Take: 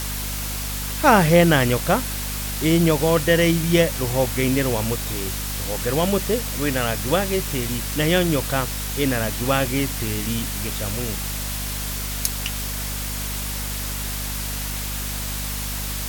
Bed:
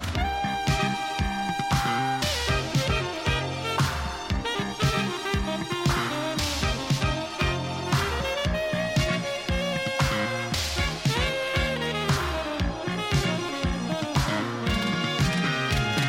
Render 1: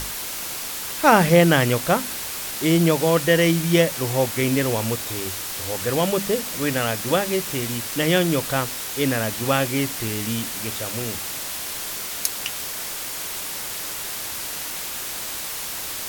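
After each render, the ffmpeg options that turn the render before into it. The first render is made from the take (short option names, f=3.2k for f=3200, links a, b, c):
-af "bandreject=f=50:t=h:w=6,bandreject=f=100:t=h:w=6,bandreject=f=150:t=h:w=6,bandreject=f=200:t=h:w=6,bandreject=f=250:t=h:w=6"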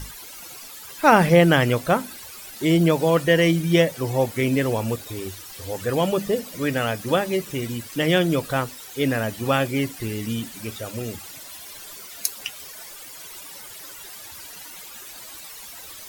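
-af "afftdn=nr=14:nf=-31"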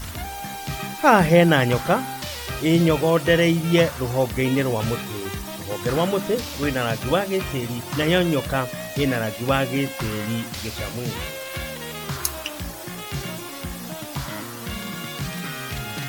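-filter_complex "[1:a]volume=-6dB[a];[0:a][a]amix=inputs=2:normalize=0"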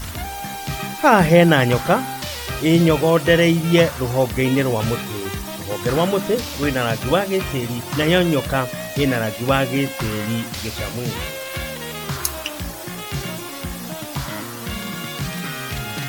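-af "volume=3dB,alimiter=limit=-2dB:level=0:latency=1"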